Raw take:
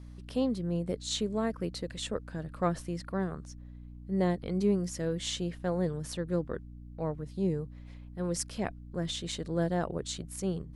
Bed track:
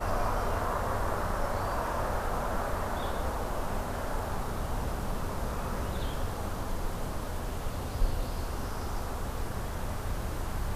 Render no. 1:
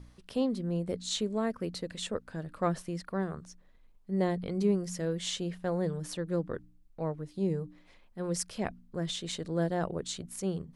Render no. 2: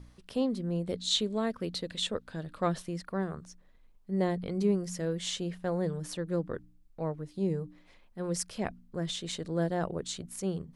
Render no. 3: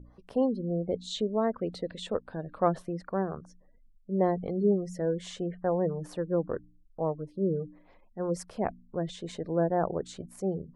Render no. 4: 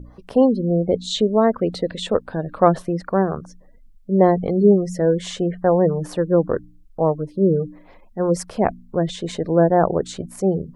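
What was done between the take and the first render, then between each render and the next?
de-hum 60 Hz, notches 5
0.85–2.86 s: peaking EQ 3.6 kHz +8 dB 0.65 oct
spectral gate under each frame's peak -30 dB strong; FFT filter 170 Hz 0 dB, 800 Hz +7 dB, 3.2 kHz -9 dB
trim +11.5 dB; peak limiter -1 dBFS, peak gain reduction 1 dB

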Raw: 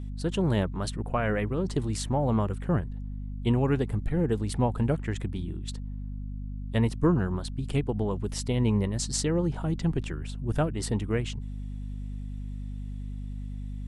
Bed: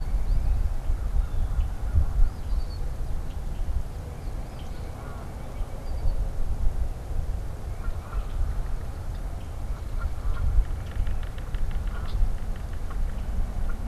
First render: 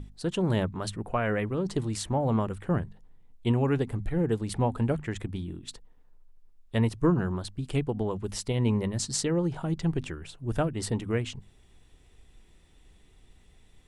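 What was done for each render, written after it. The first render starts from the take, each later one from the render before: hum notches 50/100/150/200/250 Hz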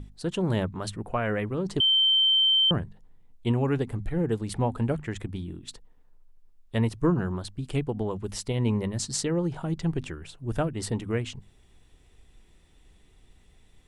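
1.80–2.71 s: bleep 3.11 kHz -18 dBFS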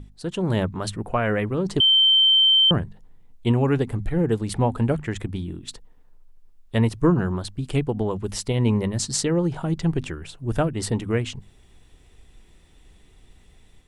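level rider gain up to 5 dB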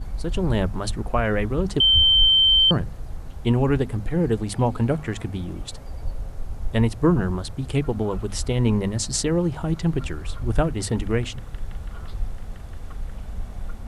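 add bed -3.5 dB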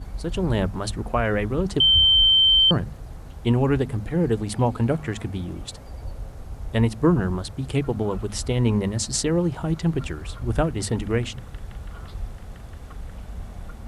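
high-pass 40 Hz; de-hum 72.33 Hz, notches 3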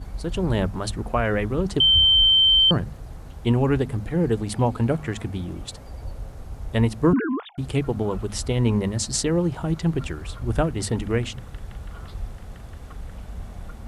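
7.13–7.58 s: formants replaced by sine waves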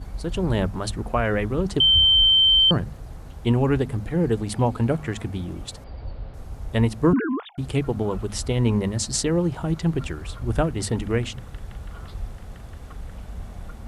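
5.84–6.34 s: Chebyshev low-pass 4.7 kHz, order 5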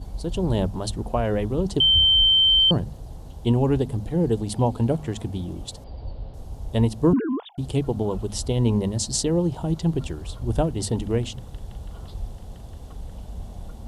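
high-order bell 1.7 kHz -10 dB 1.3 oct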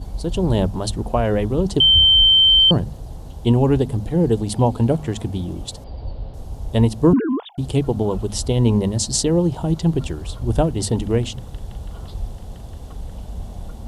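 trim +4.5 dB

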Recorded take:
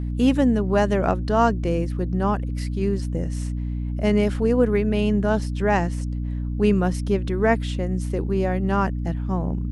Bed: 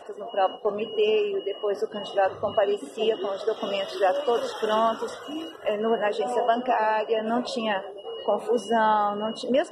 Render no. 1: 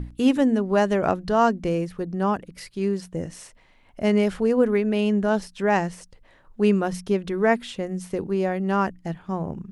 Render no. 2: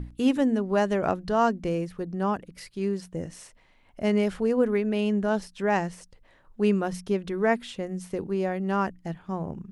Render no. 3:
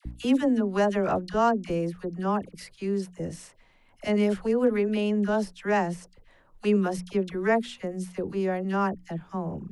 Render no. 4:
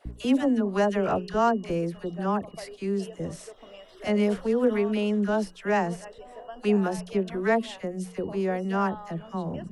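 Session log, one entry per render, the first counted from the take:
hum notches 60/120/180/240/300 Hz
trim -3.5 dB
phase dispersion lows, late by 57 ms, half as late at 1 kHz
add bed -19 dB

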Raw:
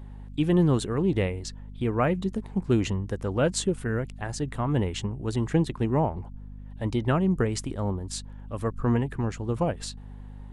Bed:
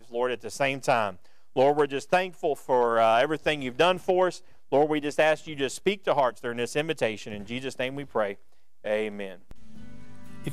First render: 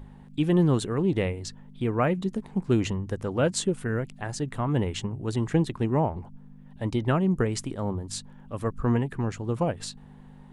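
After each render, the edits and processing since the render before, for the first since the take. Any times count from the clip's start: de-hum 50 Hz, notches 2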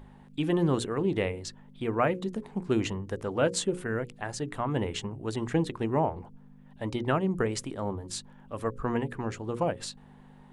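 tone controls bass -6 dB, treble -2 dB; hum notches 60/120/180/240/300/360/420/480/540 Hz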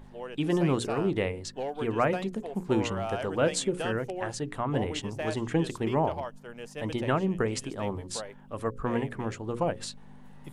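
add bed -13 dB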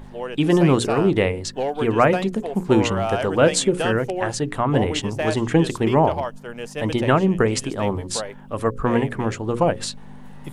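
trim +9.5 dB

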